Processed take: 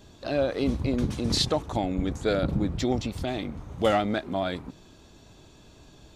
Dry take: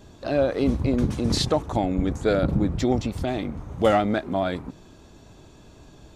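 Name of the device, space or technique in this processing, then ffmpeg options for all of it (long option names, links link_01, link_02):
presence and air boost: -af "equalizer=frequency=3700:width_type=o:width=1.5:gain=5,highshelf=frequency=10000:gain=4.5,volume=-4dB"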